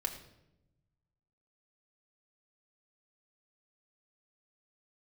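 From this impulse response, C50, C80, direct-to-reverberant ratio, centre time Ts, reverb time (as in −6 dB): 10.0 dB, 11.5 dB, 3.0 dB, 16 ms, 0.90 s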